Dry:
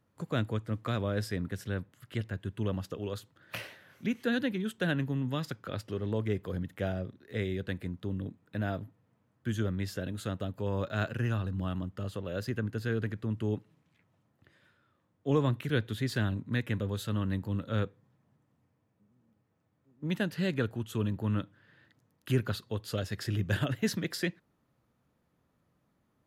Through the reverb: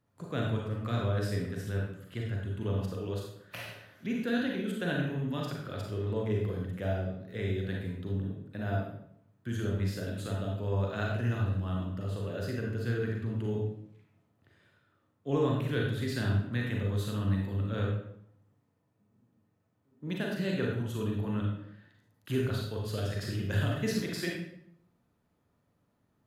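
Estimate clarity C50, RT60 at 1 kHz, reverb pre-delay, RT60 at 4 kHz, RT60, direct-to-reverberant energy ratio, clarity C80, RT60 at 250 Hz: 2.0 dB, 0.65 s, 34 ms, 0.55 s, 0.70 s, -2.0 dB, 5.0 dB, 0.85 s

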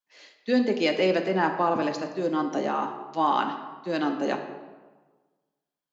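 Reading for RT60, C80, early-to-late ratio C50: 1.3 s, 9.5 dB, 8.0 dB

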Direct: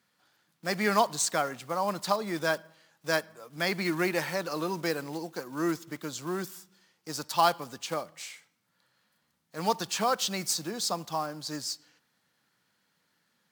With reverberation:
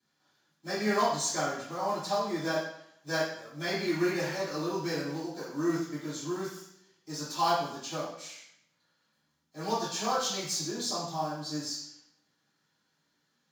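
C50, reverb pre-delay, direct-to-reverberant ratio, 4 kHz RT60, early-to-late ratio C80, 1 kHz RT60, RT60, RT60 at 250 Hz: 1.0 dB, 3 ms, -13.5 dB, 0.70 s, 5.5 dB, 0.70 s, 0.70 s, 0.70 s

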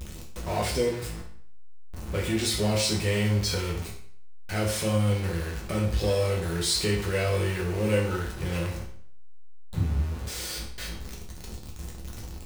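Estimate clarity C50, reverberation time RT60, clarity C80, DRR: 6.0 dB, 0.55 s, 9.5 dB, -3.0 dB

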